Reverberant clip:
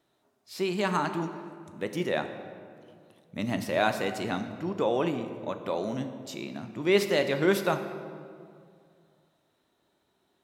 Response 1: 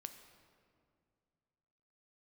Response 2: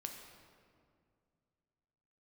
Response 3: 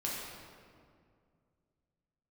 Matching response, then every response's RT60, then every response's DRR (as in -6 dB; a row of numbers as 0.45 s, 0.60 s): 1; 2.3 s, 2.2 s, 2.2 s; 7.5 dB, 3.0 dB, -5.5 dB